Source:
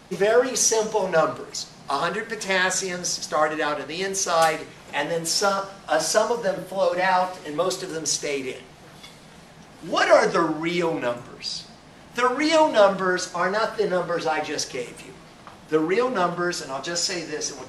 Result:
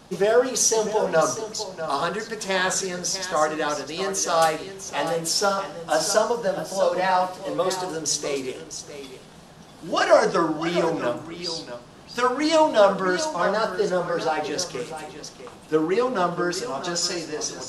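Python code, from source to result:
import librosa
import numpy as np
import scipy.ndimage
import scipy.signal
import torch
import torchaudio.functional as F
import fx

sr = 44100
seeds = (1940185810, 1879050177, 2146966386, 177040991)

p1 = fx.peak_eq(x, sr, hz=2100.0, db=-6.5, octaves=0.57)
y = p1 + fx.echo_single(p1, sr, ms=650, db=-11.0, dry=0)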